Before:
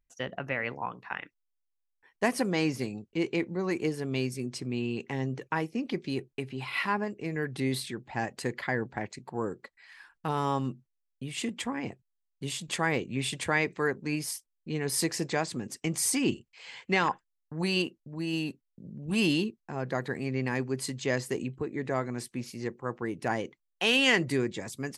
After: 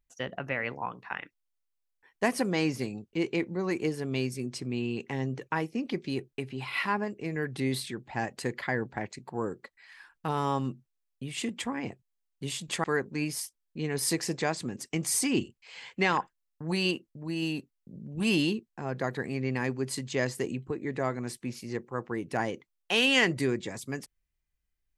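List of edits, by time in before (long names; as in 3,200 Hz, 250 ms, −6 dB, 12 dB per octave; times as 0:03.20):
0:12.84–0:13.75: remove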